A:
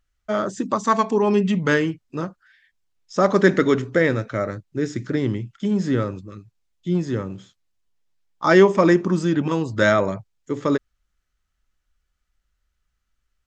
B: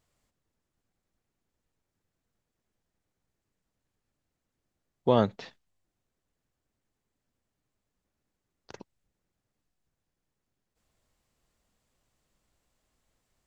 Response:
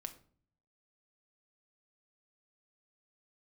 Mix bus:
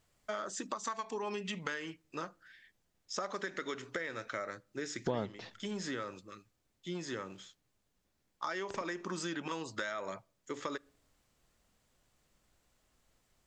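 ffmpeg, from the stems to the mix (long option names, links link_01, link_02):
-filter_complex "[0:a]highpass=frequency=1500:poles=1,acompressor=threshold=-29dB:ratio=6,volume=-1dB,asplit=2[link_01][link_02];[link_02]volume=-14.5dB[link_03];[1:a]volume=1.5dB,asplit=2[link_04][link_05];[link_05]volume=-14.5dB[link_06];[2:a]atrim=start_sample=2205[link_07];[link_03][link_06]amix=inputs=2:normalize=0[link_08];[link_08][link_07]afir=irnorm=-1:irlink=0[link_09];[link_01][link_04][link_09]amix=inputs=3:normalize=0,acompressor=threshold=-36dB:ratio=3"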